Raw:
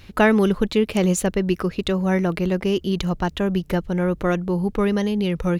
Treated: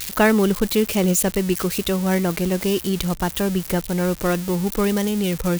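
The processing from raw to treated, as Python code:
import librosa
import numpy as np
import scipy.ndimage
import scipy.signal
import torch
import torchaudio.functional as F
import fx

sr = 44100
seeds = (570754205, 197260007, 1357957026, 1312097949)

y = x + 0.5 * 10.0 ** (-17.0 / 20.0) * np.diff(np.sign(x), prepend=np.sign(x[:1]))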